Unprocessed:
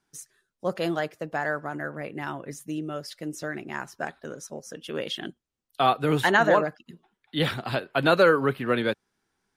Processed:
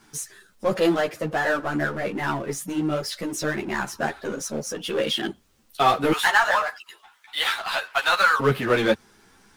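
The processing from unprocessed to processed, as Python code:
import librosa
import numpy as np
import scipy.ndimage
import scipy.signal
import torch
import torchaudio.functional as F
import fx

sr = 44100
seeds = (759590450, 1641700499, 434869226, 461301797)

y = fx.highpass(x, sr, hz=830.0, slope=24, at=(6.12, 8.4))
y = fx.power_curve(y, sr, exponent=0.7)
y = fx.ensemble(y, sr)
y = y * librosa.db_to_amplitude(4.0)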